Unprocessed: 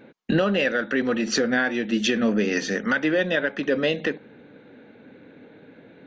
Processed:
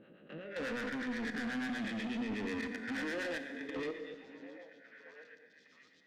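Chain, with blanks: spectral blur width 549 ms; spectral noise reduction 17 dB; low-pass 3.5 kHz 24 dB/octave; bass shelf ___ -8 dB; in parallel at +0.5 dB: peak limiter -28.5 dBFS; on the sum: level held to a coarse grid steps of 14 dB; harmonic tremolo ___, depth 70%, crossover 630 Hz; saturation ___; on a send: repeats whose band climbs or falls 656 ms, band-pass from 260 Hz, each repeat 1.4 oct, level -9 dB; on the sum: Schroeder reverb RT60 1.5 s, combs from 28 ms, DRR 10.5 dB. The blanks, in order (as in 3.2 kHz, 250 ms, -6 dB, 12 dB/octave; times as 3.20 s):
95 Hz, 8.2 Hz, -35.5 dBFS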